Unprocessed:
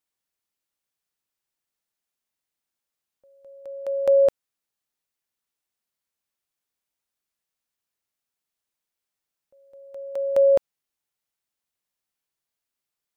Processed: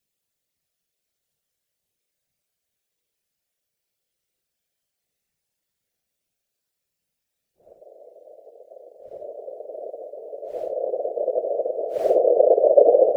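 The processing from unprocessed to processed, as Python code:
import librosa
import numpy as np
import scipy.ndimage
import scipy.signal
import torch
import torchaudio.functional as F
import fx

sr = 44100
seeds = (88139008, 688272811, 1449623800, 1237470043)

y = fx.paulstretch(x, sr, seeds[0], factor=6.9, window_s=0.05, from_s=8.41)
y = fx.graphic_eq(y, sr, hz=(125, 250, 500, 1000), db=(12, -11, 9, -10))
y = fx.whisperise(y, sr, seeds[1])
y = y * librosa.db_to_amplitude(5.0)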